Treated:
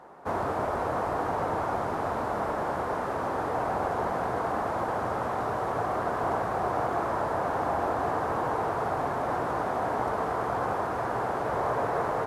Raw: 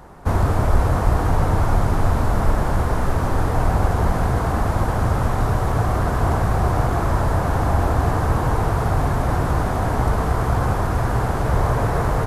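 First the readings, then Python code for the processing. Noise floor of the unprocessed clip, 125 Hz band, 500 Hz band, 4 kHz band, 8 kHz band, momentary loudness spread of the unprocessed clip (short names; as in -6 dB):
-22 dBFS, -20.5 dB, -4.0 dB, -10.0 dB, -14.0 dB, 2 LU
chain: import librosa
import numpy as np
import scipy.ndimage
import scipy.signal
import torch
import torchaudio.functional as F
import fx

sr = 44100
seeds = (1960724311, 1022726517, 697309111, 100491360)

y = scipy.signal.sosfilt(scipy.signal.butter(2, 550.0, 'highpass', fs=sr, output='sos'), x)
y = fx.tilt_eq(y, sr, slope=-3.5)
y = y * 10.0 ** (-3.5 / 20.0)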